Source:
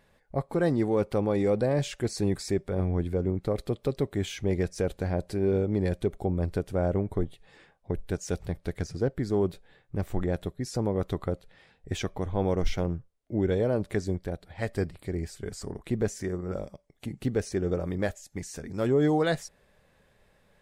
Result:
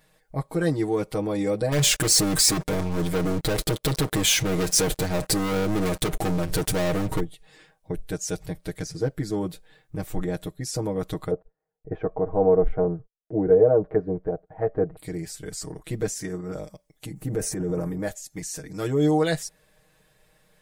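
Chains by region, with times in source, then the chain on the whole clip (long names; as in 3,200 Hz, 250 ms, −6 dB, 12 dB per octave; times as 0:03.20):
0:01.72–0:07.20: leveller curve on the samples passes 5 + downward compressor 5 to 1, threshold −23 dBFS
0:11.31–0:14.97: low-pass filter 1,400 Hz 24 dB per octave + noise gate −52 dBFS, range −28 dB + hollow resonant body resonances 450/680 Hz, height 11 dB, ringing for 30 ms
0:17.13–0:18.07: transient designer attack −2 dB, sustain +10 dB + parametric band 3,800 Hz −13.5 dB 1.6 octaves
whole clip: high-shelf EQ 4,700 Hz +11.5 dB; comb filter 6.4 ms, depth 92%; level −2 dB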